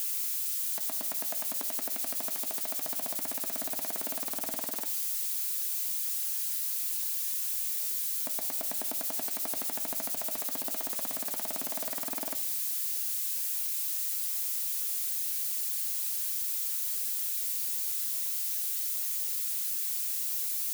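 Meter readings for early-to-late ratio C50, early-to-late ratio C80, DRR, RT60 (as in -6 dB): 16.0 dB, 21.0 dB, 6.5 dB, 0.60 s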